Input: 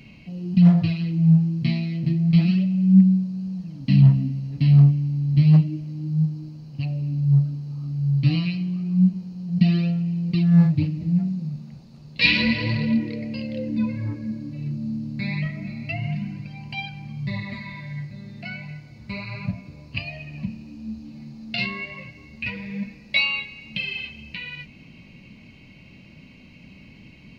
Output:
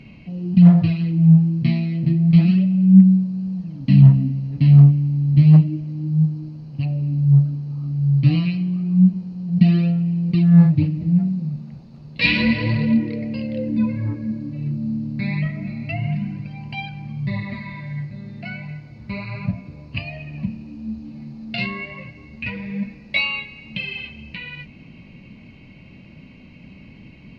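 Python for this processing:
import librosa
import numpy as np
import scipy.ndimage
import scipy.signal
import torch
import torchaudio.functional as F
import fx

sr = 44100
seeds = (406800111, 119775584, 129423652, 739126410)

y = fx.lowpass(x, sr, hz=2100.0, slope=6)
y = y * librosa.db_to_amplitude(4.0)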